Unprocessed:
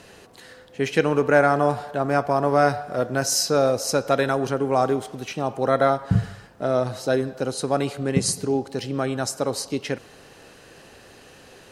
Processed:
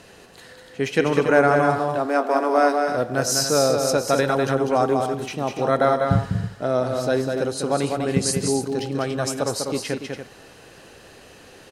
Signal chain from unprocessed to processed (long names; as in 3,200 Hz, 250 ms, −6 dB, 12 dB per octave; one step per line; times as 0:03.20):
0:01.79–0:02.87: Butterworth high-pass 230 Hz 96 dB per octave
on a send: loudspeakers that aren't time-aligned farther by 68 metres −5 dB, 98 metres −10 dB